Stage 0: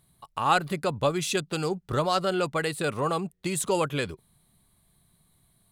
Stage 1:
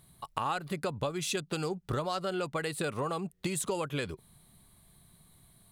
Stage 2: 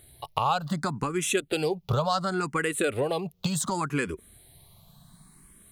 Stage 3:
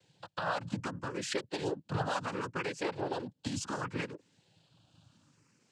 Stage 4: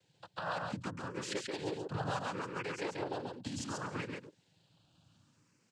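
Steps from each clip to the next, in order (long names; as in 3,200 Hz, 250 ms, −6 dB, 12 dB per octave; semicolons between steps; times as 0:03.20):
downward compressor 6 to 1, threshold −35 dBFS, peak gain reduction 17 dB; level +4.5 dB
frequency shifter mixed with the dry sound +0.69 Hz; level +9 dB
cochlear-implant simulation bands 8; level −8 dB
single-tap delay 136 ms −3.5 dB; level −4.5 dB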